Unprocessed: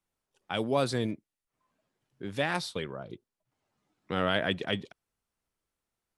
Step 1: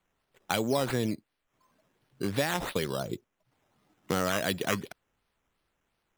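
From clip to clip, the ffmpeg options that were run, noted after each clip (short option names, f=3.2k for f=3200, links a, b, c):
-af "acompressor=threshold=-34dB:ratio=4,acrusher=samples=8:mix=1:aa=0.000001:lfo=1:lforange=4.8:lforate=2.8,volume=8.5dB"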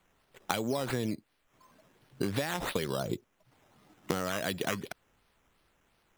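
-af "acompressor=threshold=-35dB:ratio=12,volume=7.5dB"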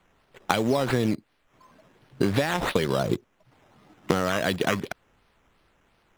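-filter_complex "[0:a]lowpass=f=3.9k:p=1,asplit=2[a][b];[b]acrusher=bits=5:mix=0:aa=0.000001,volume=-11dB[c];[a][c]amix=inputs=2:normalize=0,volume=6.5dB"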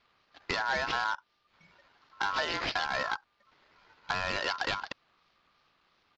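-af "aeval=exprs='val(0)*sin(2*PI*1200*n/s)':c=same,aresample=16000,volume=19.5dB,asoftclip=hard,volume=-19.5dB,aresample=44100,lowpass=f=4.7k:t=q:w=2.2,volume=-4dB"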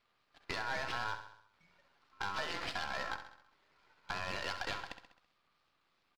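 -filter_complex "[0:a]aeval=exprs='if(lt(val(0),0),0.447*val(0),val(0))':c=same,asplit=2[a][b];[b]aecho=0:1:66|132|198|264|330|396:0.316|0.171|0.0922|0.0498|0.0269|0.0145[c];[a][c]amix=inputs=2:normalize=0,volume=-5.5dB"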